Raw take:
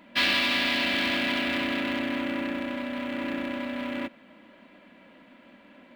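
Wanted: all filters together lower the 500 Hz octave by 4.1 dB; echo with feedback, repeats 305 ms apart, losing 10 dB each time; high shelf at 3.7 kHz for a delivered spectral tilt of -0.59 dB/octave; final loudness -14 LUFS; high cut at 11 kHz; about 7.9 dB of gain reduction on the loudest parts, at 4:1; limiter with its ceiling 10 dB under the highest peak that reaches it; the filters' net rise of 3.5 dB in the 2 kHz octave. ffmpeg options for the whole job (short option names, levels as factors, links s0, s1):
-af "lowpass=11000,equalizer=f=500:t=o:g=-5.5,equalizer=f=2000:t=o:g=3.5,highshelf=f=3700:g=3.5,acompressor=threshold=0.0447:ratio=4,alimiter=level_in=1.26:limit=0.0631:level=0:latency=1,volume=0.794,aecho=1:1:305|610|915|1220:0.316|0.101|0.0324|0.0104,volume=10"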